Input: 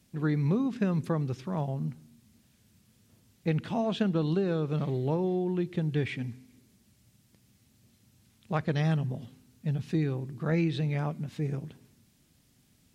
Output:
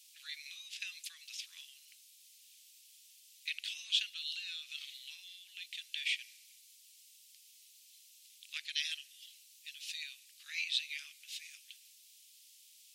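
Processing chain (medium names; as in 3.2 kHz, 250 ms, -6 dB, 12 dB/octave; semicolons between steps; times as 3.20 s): steep high-pass 2.6 kHz 36 dB/octave; trim +10 dB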